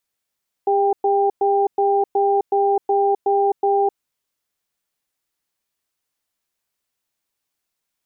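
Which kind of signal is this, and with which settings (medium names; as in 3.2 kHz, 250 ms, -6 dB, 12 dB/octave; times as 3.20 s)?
cadence 401 Hz, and 793 Hz, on 0.26 s, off 0.11 s, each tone -17 dBFS 3.29 s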